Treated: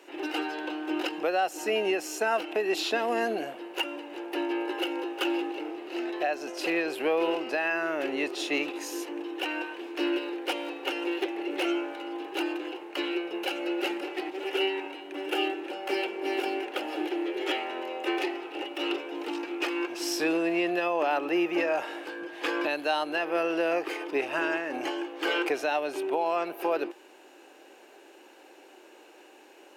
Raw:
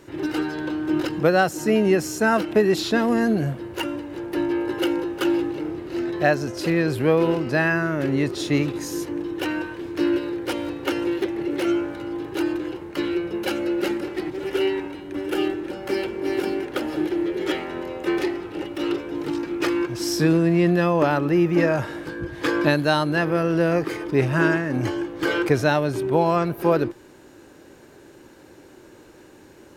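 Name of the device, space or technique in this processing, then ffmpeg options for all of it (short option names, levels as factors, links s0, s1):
laptop speaker: -af "highpass=f=330:w=0.5412,highpass=f=330:w=1.3066,equalizer=f=760:t=o:w=0.42:g=8.5,equalizer=f=2700:t=o:w=0.46:g=10.5,alimiter=limit=0.237:level=0:latency=1:release=205,volume=0.562"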